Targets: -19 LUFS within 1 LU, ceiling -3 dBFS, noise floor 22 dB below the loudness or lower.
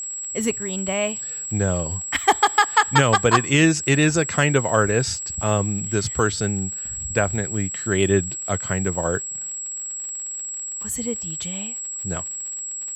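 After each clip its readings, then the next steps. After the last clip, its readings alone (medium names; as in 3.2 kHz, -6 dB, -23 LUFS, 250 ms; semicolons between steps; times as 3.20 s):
tick rate 55 per s; steady tone 7.7 kHz; tone level -28 dBFS; loudness -22.0 LUFS; peak level -3.0 dBFS; loudness target -19.0 LUFS
-> de-click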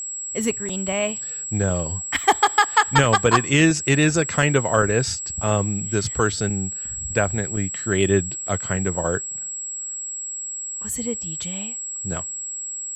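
tick rate 0.62 per s; steady tone 7.7 kHz; tone level -28 dBFS
-> band-stop 7.7 kHz, Q 30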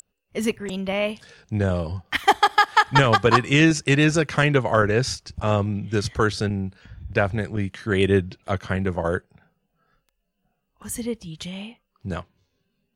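steady tone not found; loudness -22.0 LUFS; peak level -3.0 dBFS; loudness target -19.0 LUFS
-> trim +3 dB; peak limiter -3 dBFS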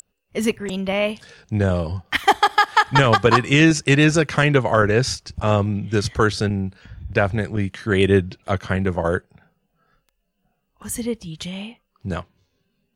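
loudness -19.5 LUFS; peak level -3.0 dBFS; noise floor -73 dBFS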